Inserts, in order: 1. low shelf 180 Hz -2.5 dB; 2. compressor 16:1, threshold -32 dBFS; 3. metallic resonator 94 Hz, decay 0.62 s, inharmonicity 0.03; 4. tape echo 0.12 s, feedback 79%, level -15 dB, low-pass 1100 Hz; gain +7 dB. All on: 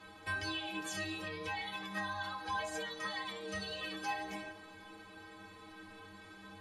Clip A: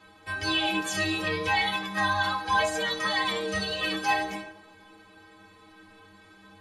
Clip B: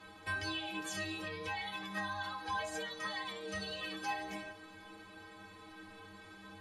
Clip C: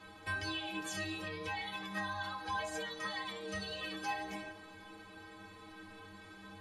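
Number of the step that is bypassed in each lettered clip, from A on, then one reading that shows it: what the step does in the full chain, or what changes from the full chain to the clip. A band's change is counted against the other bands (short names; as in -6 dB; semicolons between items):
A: 2, mean gain reduction 7.5 dB; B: 4, echo-to-direct -45.5 dB to none; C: 1, 125 Hz band +1.5 dB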